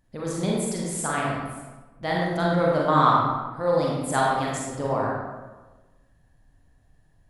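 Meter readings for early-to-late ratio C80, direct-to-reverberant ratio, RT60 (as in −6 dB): 1.5 dB, −4.0 dB, 1.3 s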